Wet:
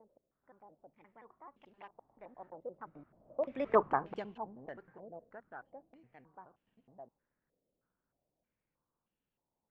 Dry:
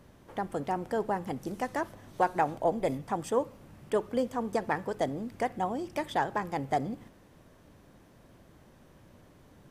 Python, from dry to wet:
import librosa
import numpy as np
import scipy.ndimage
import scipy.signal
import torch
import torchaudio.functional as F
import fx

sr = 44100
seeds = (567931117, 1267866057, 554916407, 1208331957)

y = fx.block_reorder(x, sr, ms=96.0, group=5)
y = fx.doppler_pass(y, sr, speed_mps=33, closest_m=3.1, pass_at_s=3.8)
y = fx.peak_eq(y, sr, hz=90.0, db=-9.5, octaves=0.4)
y = fx.filter_held_lowpass(y, sr, hz=3.2, low_hz=540.0, high_hz=2900.0)